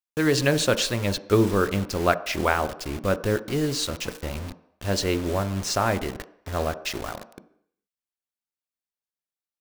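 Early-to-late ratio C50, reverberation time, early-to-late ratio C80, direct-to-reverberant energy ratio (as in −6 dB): 16.0 dB, 0.70 s, 18.0 dB, 11.0 dB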